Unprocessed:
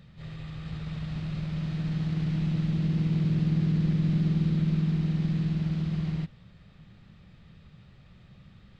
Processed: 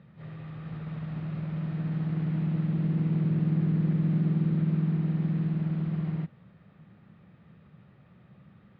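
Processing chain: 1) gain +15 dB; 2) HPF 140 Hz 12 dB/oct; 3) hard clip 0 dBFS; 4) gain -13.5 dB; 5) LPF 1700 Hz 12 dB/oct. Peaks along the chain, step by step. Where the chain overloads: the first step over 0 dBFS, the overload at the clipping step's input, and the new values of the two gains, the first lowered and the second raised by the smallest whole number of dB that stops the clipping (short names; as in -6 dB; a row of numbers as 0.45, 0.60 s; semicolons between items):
-1.0, -3.0, -3.0, -16.5, -17.0 dBFS; no overload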